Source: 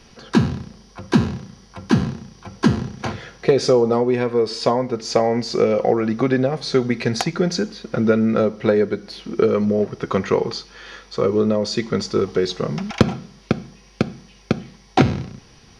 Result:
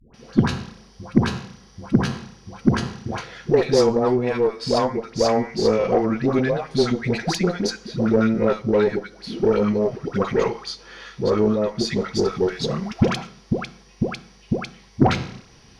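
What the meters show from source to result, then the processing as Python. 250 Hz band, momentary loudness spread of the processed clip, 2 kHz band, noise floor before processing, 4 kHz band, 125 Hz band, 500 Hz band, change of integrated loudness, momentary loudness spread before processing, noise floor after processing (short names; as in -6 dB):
-1.5 dB, 13 LU, -1.0 dB, -49 dBFS, -1.5 dB, -1.5 dB, -1.5 dB, -1.5 dB, 12 LU, -51 dBFS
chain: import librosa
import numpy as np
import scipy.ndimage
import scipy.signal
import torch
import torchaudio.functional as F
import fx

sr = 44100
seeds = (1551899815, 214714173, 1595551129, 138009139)

y = fx.dispersion(x, sr, late='highs', ms=142.0, hz=650.0)
y = fx.cheby_harmonics(y, sr, harmonics=(8,), levels_db=(-27,), full_scale_db=0.0)
y = y * 10.0 ** (-1.5 / 20.0)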